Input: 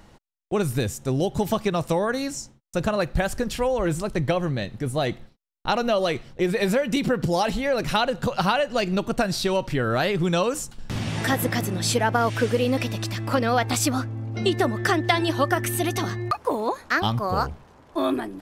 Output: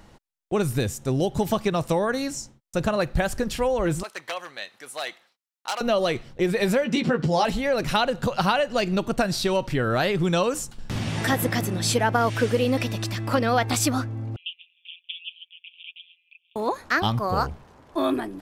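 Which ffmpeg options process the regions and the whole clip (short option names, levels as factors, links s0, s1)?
-filter_complex "[0:a]asettb=1/sr,asplit=3[s0][s1][s2];[s0]atrim=end=4.034[s3];[s1]atrim=start=4.03:end=5.81,asetpts=PTS-STARTPTS,afade=t=in:d=0.004:c=qsin,afade=t=out:st=1.776:d=0.004:c=qsin,aeval=exprs='0.15*(abs(mod(val(0)/0.15+3,4)-2)-1)':c=same,highpass=1000[s4];[s2]atrim=start=5.806[s5];[s3][s4]acrossfade=d=0.004:c1=hsin:c2=qsin[s6];[s6][s5]acrossfade=d=0.004:c1=qsin:c2=hsin,asettb=1/sr,asplit=3[s7][s8][s9];[s7]atrim=end=6.844[s10];[s8]atrim=start=6.84:end=7.45,asetpts=PTS-STARTPTS,afade=t=in:d=0.004:c=qsin,afade=t=out:st=0.606:d=0.004:c=qsin,highpass=110,lowpass=5900,asplit=2[s11][s12];[s12]adelay=13,volume=0.596[s13];[s11][s13]amix=inputs=2:normalize=0,atrim=end_sample=26901[s14];[s9]atrim=start=7.446[s15];[s10][s14]acrossfade=d=0.004:c1=hsin:c2=qsin[s16];[s16][s15]acrossfade=d=0.004:c1=qsin:c2=hsin,asettb=1/sr,asplit=3[s17][s18][s19];[s17]atrim=end=14.364[s20];[s18]atrim=start=14.36:end=16.56,asetpts=PTS-STARTPTS,afade=t=in:d=0.004:c=qsin,afade=t=out:st=2.196:d=0.004:c=qsin,asuperpass=centerf=2900:order=12:qfactor=3,aeval=exprs='val(0)*sin(2*PI*86*n/s)':c=same[s21];[s19]atrim=start=16.556[s22];[s20][s21]acrossfade=d=0.004:c1=hsin:c2=qsin[s23];[s23][s22]acrossfade=d=0.004:c1=qsin:c2=hsin"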